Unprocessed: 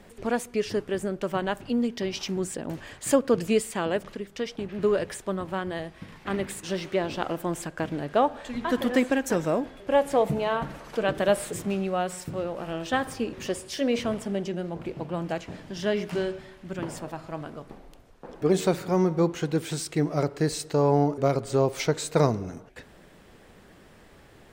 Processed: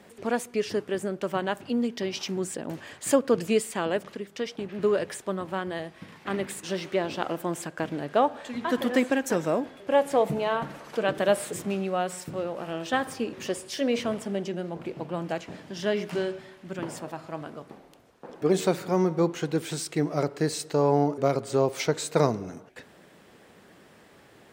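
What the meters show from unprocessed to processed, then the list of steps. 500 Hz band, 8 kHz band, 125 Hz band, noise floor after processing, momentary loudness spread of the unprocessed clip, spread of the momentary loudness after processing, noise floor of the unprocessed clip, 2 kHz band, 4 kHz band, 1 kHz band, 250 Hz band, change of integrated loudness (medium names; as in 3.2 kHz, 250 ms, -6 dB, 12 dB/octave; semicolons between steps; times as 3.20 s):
-0.5 dB, 0.0 dB, -3.0 dB, -55 dBFS, 11 LU, 11 LU, -53 dBFS, 0.0 dB, 0.0 dB, 0.0 dB, -1.0 dB, -0.5 dB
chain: Bessel high-pass 150 Hz, order 2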